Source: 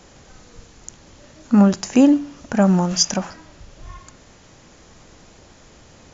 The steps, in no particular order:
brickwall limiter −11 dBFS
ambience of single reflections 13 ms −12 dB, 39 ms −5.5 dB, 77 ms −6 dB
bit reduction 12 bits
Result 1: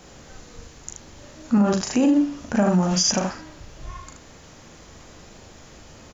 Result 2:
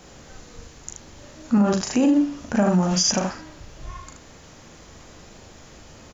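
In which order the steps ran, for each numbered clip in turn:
ambience of single reflections, then bit reduction, then brickwall limiter
ambience of single reflections, then brickwall limiter, then bit reduction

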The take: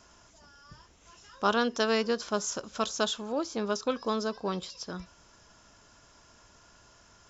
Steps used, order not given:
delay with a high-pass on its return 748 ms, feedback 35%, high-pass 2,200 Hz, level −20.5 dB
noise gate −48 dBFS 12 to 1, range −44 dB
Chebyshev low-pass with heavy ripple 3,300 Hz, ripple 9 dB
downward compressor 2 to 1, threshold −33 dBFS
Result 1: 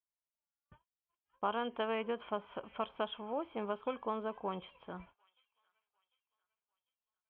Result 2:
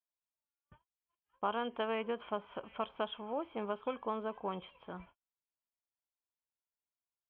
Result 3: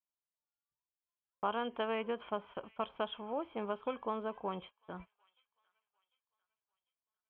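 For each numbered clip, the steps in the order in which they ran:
noise gate, then Chebyshev low-pass with heavy ripple, then downward compressor, then delay with a high-pass on its return
delay with a high-pass on its return, then noise gate, then Chebyshev low-pass with heavy ripple, then downward compressor
Chebyshev low-pass with heavy ripple, then noise gate, then downward compressor, then delay with a high-pass on its return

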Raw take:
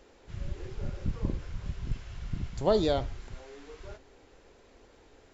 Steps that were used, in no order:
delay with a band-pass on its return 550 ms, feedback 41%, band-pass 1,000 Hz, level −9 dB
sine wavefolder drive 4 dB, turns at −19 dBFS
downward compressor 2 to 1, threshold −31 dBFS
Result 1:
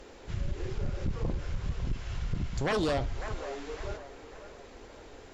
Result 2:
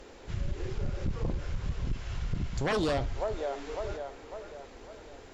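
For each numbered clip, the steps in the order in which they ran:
sine wavefolder, then downward compressor, then delay with a band-pass on its return
delay with a band-pass on its return, then sine wavefolder, then downward compressor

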